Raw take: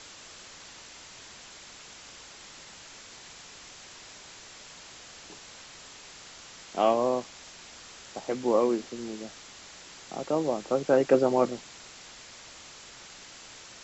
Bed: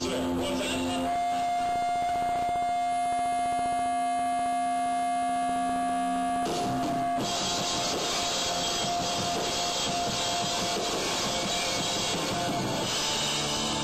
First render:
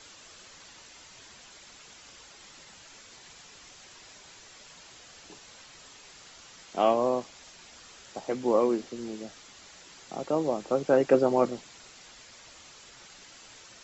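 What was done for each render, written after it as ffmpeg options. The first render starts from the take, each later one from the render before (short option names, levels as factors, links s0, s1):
-af "afftdn=nr=6:nf=-49"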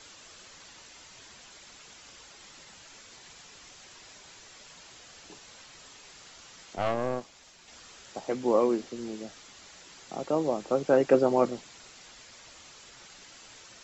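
-filter_complex "[0:a]asettb=1/sr,asplit=3[s0][s1][s2];[s0]atrim=end=6.754[s3];[s1]atrim=start=6.75:end=7.68,asetpts=PTS-STARTPTS,afade=t=in:d=0.004:c=qsin,afade=t=out:st=0.926:d=0.004:c=qsin,aeval=exprs='(tanh(12.6*val(0)+0.75)-tanh(0.75))/12.6':c=same[s4];[s2]atrim=start=7.676[s5];[s3][s4]acrossfade=d=0.004:c1=hsin:c2=qsin[s6];[s6][s5]acrossfade=d=0.004:c1=qsin:c2=hsin"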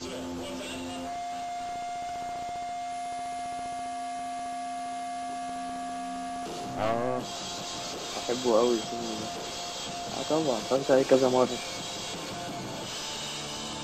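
-filter_complex "[1:a]volume=0.422[s0];[0:a][s0]amix=inputs=2:normalize=0"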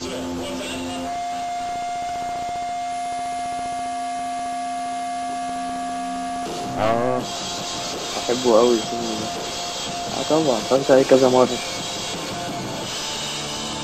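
-af "volume=2.66,alimiter=limit=0.794:level=0:latency=1"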